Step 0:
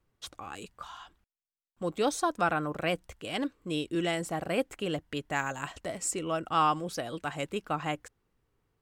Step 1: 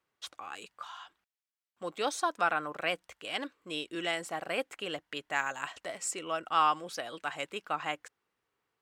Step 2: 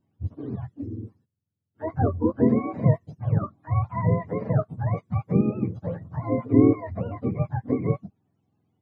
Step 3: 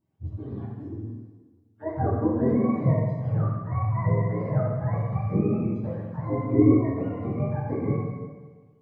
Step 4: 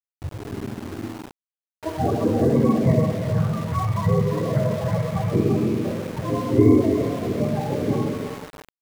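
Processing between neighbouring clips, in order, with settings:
high-pass 1.3 kHz 6 dB/octave; treble shelf 5.2 kHz -9.5 dB; trim +4 dB
spectrum inverted on a logarithmic axis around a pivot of 580 Hz; trim +9 dB
plate-style reverb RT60 1.4 s, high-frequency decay 0.95×, DRR -4.5 dB; trim -6.5 dB
coarse spectral quantiser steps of 30 dB; two-band feedback delay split 430 Hz, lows 105 ms, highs 341 ms, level -6 dB; small samples zeroed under -36 dBFS; trim +3.5 dB

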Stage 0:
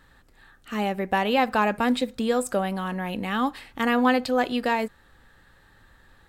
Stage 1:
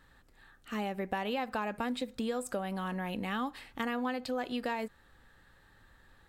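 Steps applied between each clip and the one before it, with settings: compression 6:1, threshold -25 dBFS, peak gain reduction 9.5 dB; trim -5.5 dB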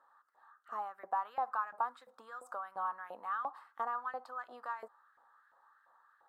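resonant high shelf 1.7 kHz -12 dB, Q 3; LFO high-pass saw up 2.9 Hz 620–1900 Hz; trim -7 dB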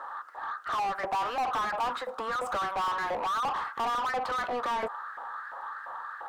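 overdrive pedal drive 38 dB, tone 1.6 kHz, clips at -21.5 dBFS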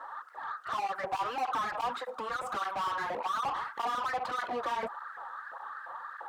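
cancelling through-zero flanger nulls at 1.7 Hz, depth 5.3 ms

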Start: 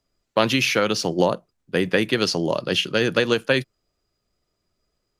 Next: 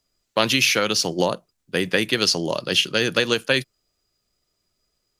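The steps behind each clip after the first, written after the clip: treble shelf 2.6 kHz +10 dB; trim -2.5 dB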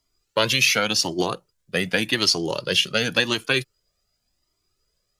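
Shepard-style flanger rising 0.89 Hz; trim +4 dB

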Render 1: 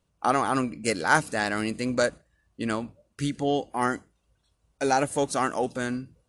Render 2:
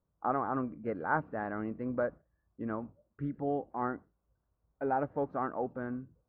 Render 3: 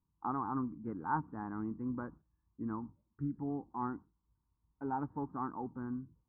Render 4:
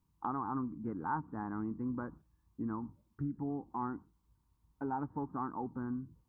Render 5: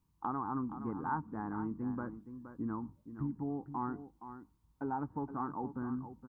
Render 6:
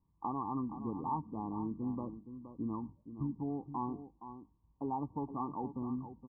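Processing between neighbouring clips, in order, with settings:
low-pass 1.4 kHz 24 dB/octave; trim -7.5 dB
FFT filter 320 Hz 0 dB, 610 Hz -22 dB, 930 Hz +3 dB, 2.3 kHz -20 dB; trim -1 dB
compression 2:1, threshold -45 dBFS, peak gain reduction 9.5 dB; trim +6.5 dB
delay 470 ms -11 dB
brick-wall FIR low-pass 1.2 kHz

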